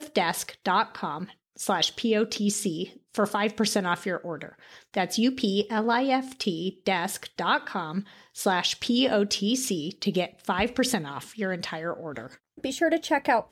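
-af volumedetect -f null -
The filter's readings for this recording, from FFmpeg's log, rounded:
mean_volume: -27.5 dB
max_volume: -11.8 dB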